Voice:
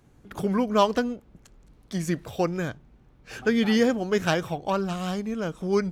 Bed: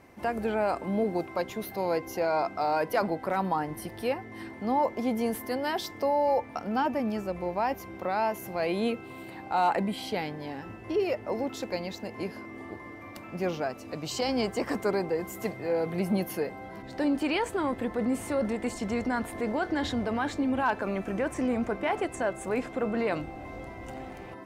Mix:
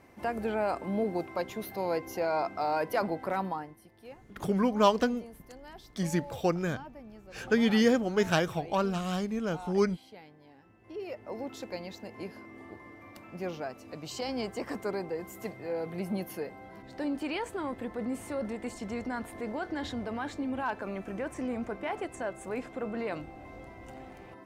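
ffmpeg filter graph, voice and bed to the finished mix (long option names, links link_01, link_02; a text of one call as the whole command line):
ffmpeg -i stem1.wav -i stem2.wav -filter_complex "[0:a]adelay=4050,volume=-2.5dB[link_01];[1:a]volume=10.5dB,afade=type=out:start_time=3.35:duration=0.42:silence=0.149624,afade=type=in:start_time=10.73:duration=0.79:silence=0.223872[link_02];[link_01][link_02]amix=inputs=2:normalize=0" out.wav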